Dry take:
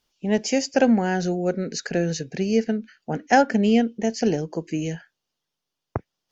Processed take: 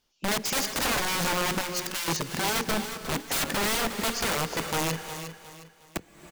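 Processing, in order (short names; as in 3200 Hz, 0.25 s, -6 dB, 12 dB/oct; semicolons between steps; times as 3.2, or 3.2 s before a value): wrapped overs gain 22 dB; 1.61–2.08 Bessel high-pass 2400 Hz; feedback echo 0.36 s, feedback 35%, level -11 dB; non-linear reverb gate 0.38 s rising, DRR 11 dB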